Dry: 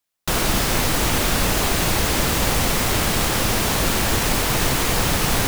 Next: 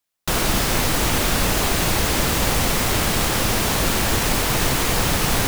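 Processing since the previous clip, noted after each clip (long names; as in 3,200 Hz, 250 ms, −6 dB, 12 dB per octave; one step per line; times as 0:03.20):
no processing that can be heard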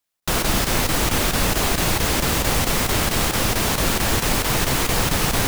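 square-wave tremolo 4.5 Hz, depth 60%, duty 90%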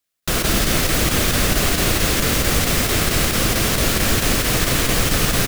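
parametric band 890 Hz −9 dB 0.43 octaves
single-tap delay 164 ms −5.5 dB
level +1.5 dB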